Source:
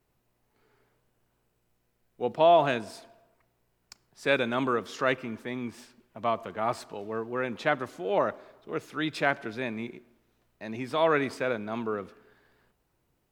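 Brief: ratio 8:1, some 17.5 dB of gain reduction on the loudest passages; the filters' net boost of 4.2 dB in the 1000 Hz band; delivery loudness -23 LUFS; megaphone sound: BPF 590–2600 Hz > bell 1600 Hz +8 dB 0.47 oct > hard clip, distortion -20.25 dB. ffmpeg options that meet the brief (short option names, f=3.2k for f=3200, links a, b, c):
-af "equalizer=f=1k:t=o:g=5.5,acompressor=threshold=-32dB:ratio=8,highpass=590,lowpass=2.6k,equalizer=f=1.6k:t=o:w=0.47:g=8,asoftclip=type=hard:threshold=-26dB,volume=15.5dB"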